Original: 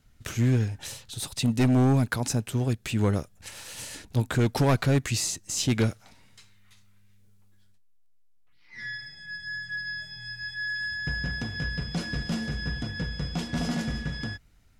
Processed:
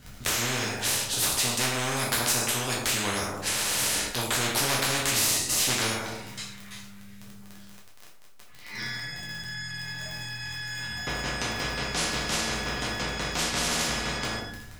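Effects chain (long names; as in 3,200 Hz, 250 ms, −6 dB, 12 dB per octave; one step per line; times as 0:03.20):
surface crackle 18 per second −41 dBFS
dense smooth reverb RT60 0.61 s, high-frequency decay 0.75×, DRR −4.5 dB
every bin compressed towards the loudest bin 4 to 1
level −4 dB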